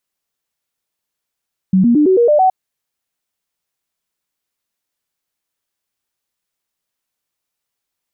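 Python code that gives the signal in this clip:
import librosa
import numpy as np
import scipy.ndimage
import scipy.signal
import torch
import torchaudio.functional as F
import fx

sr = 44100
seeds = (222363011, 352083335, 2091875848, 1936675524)

y = fx.stepped_sweep(sr, from_hz=188.0, direction='up', per_octave=3, tones=7, dwell_s=0.11, gap_s=0.0, level_db=-7.5)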